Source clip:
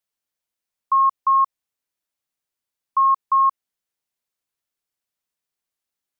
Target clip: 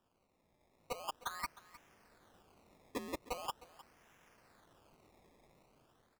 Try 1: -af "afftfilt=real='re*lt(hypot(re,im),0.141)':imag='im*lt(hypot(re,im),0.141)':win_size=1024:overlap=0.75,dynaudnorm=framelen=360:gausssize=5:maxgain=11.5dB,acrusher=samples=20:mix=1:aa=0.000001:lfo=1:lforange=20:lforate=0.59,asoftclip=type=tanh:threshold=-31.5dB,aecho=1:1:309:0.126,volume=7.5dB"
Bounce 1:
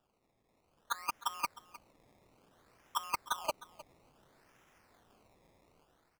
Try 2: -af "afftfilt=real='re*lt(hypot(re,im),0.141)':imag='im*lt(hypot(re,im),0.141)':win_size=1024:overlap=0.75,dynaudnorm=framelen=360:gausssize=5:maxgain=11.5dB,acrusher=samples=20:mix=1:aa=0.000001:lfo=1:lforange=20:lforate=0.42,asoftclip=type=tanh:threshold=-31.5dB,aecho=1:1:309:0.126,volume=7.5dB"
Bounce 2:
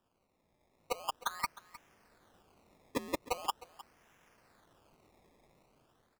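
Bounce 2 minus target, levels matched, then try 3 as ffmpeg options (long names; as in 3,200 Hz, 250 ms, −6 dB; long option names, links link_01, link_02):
soft clipping: distortion −6 dB
-af "afftfilt=real='re*lt(hypot(re,im),0.141)':imag='im*lt(hypot(re,im),0.141)':win_size=1024:overlap=0.75,dynaudnorm=framelen=360:gausssize=5:maxgain=11.5dB,acrusher=samples=20:mix=1:aa=0.000001:lfo=1:lforange=20:lforate=0.42,asoftclip=type=tanh:threshold=-41dB,aecho=1:1:309:0.126,volume=7.5dB"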